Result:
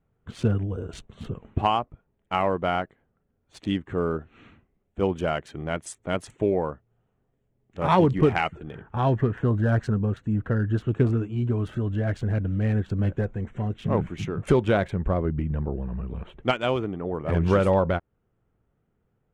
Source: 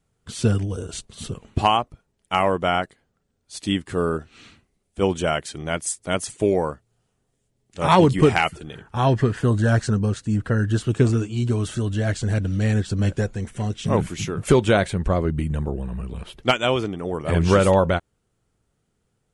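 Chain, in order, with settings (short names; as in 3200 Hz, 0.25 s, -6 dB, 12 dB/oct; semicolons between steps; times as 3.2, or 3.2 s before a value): Wiener smoothing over 9 samples; LPF 2300 Hz 6 dB/oct; in parallel at -3 dB: compressor, threshold -31 dBFS, peak gain reduction 19 dB; on the sum: gain -4.5 dB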